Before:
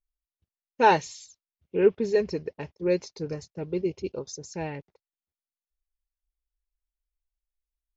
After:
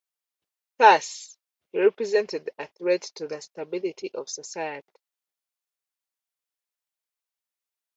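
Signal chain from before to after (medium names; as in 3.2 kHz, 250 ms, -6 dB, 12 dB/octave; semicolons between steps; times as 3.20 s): high-pass 500 Hz 12 dB/octave; trim +5.5 dB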